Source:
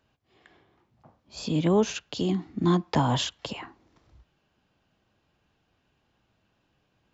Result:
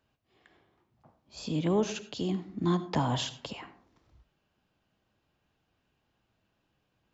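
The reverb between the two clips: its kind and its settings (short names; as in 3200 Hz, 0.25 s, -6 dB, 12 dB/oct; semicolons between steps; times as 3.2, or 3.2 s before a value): digital reverb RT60 0.54 s, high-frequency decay 0.35×, pre-delay 35 ms, DRR 13 dB; gain -5 dB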